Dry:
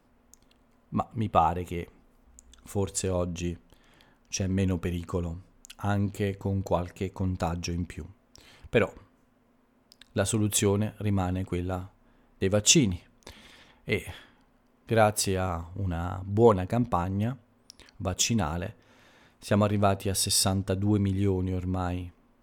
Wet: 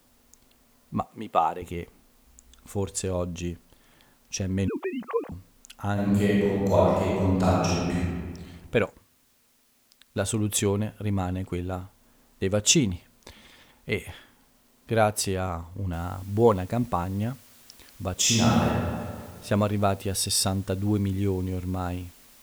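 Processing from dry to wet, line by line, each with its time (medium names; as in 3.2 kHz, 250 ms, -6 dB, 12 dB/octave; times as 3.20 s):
1.05–1.62 s: high-pass 290 Hz
4.68–5.32 s: formants replaced by sine waves
5.93–8.03 s: reverb throw, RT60 1.6 s, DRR -7.5 dB
8.85–10.24 s: companding laws mixed up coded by A
15.93 s: noise floor step -65 dB -54 dB
18.15–18.67 s: reverb throw, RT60 1.9 s, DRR -6.5 dB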